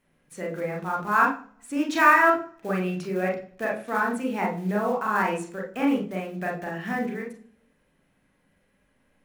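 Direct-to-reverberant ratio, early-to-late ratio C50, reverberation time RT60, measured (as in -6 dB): -1.0 dB, 8.0 dB, 0.45 s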